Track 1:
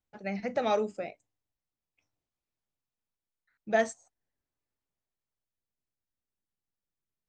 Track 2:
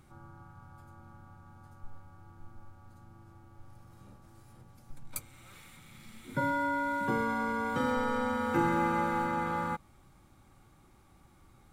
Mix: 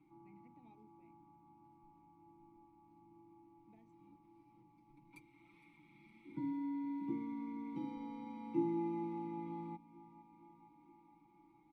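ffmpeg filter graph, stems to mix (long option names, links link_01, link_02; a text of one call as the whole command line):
ffmpeg -i stem1.wav -i stem2.wav -filter_complex "[0:a]acompressor=threshold=-26dB:ratio=6,equalizer=frequency=200:width_type=o:width=0.77:gain=7.5,volume=-19dB[link_01];[1:a]lowshelf=frequency=110:gain=8,bandreject=frequency=7100:width=5.1,aecho=1:1:6:0.81,volume=0.5dB,asplit=2[link_02][link_03];[link_03]volume=-20dB,aecho=0:1:462|924|1386|1848|2310|2772|3234|3696|4158:1|0.57|0.325|0.185|0.106|0.0602|0.0343|0.0195|0.0111[link_04];[link_01][link_02][link_04]amix=inputs=3:normalize=0,acrossover=split=410|3000[link_05][link_06][link_07];[link_06]acompressor=threshold=-54dB:ratio=2[link_08];[link_05][link_08][link_07]amix=inputs=3:normalize=0,asplit=3[link_09][link_10][link_11];[link_09]bandpass=frequency=300:width_type=q:width=8,volume=0dB[link_12];[link_10]bandpass=frequency=870:width_type=q:width=8,volume=-6dB[link_13];[link_11]bandpass=frequency=2240:width_type=q:width=8,volume=-9dB[link_14];[link_12][link_13][link_14]amix=inputs=3:normalize=0" out.wav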